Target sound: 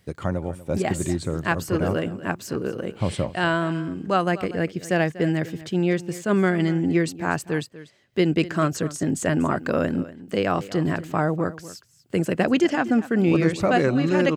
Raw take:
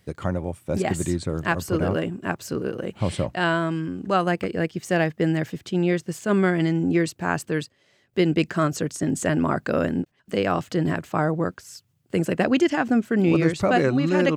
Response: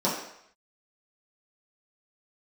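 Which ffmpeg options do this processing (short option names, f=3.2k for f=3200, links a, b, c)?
-af "aecho=1:1:242:0.15"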